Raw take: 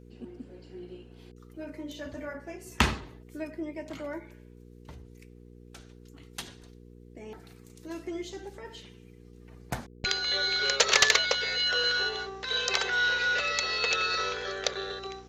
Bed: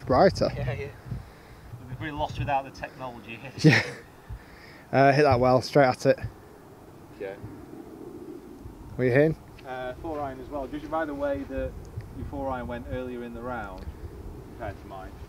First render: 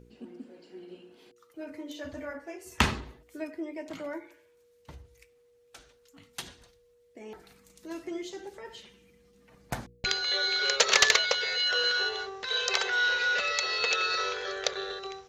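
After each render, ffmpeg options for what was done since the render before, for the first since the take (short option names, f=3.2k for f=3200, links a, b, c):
-af "bandreject=f=60:t=h:w=4,bandreject=f=120:t=h:w=4,bandreject=f=180:t=h:w=4,bandreject=f=240:t=h:w=4,bandreject=f=300:t=h:w=4,bandreject=f=360:t=h:w=4,bandreject=f=420:t=h:w=4"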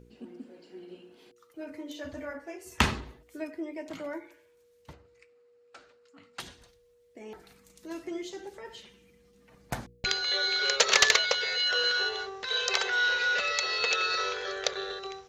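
-filter_complex "[0:a]asettb=1/sr,asplit=3[a][b][c];[a]atrim=end=4.934[d];[b]atrim=start=4.93:end=6.4,asetpts=PTS-STARTPTS,afade=t=in:d=0.004:c=qsin,afade=t=out:st=1.466:d=0.004:c=qsin,highpass=140,equalizer=f=140:t=q:w=4:g=-7,equalizer=f=560:t=q:w=4:g=4,equalizer=f=1.3k:t=q:w=4:g=6,equalizer=f=3.4k:t=q:w=4:g=-7,equalizer=f=6k:t=q:w=4:g=-10,lowpass=f=6.8k:w=0.5412,lowpass=f=6.8k:w=1.3066[e];[c]atrim=start=6.396[f];[d][e]acrossfade=d=0.004:c1=hsin:c2=qsin[g];[g][f]acrossfade=d=0.004:c1=qsin:c2=hsin"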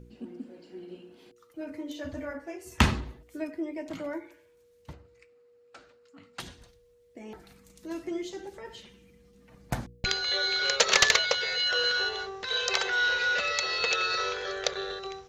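-af "lowshelf=f=320:g=6.5,bandreject=f=420:w=13"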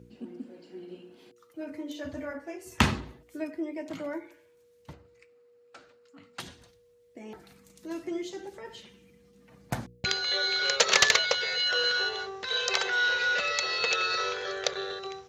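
-af "highpass=87"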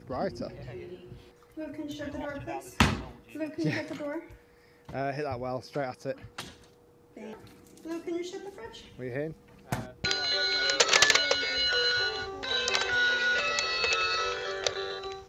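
-filter_complex "[1:a]volume=-13.5dB[a];[0:a][a]amix=inputs=2:normalize=0"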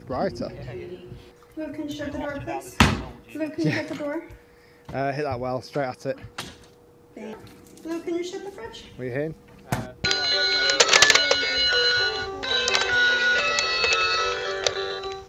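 -af "volume=6dB"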